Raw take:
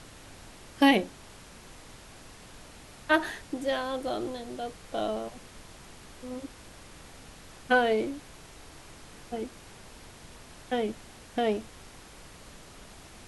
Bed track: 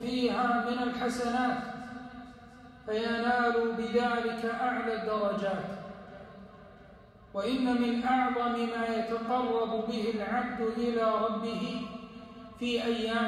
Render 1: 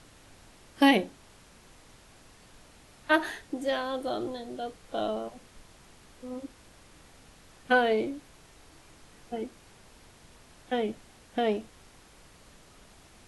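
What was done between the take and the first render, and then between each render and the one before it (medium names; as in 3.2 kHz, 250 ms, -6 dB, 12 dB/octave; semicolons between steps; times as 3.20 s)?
noise print and reduce 6 dB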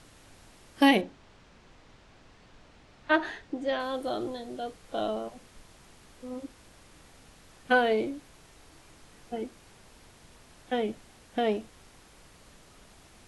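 1.01–3.80 s: distance through air 110 m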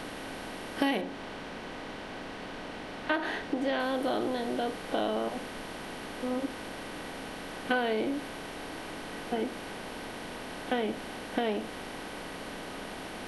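spectral levelling over time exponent 0.6; compression 3:1, threshold -27 dBFS, peak gain reduction 10 dB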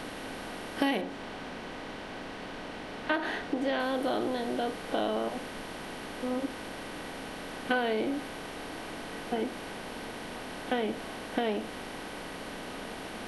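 add bed track -23.5 dB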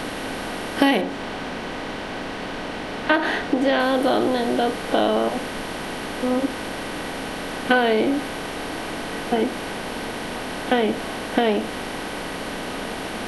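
trim +10.5 dB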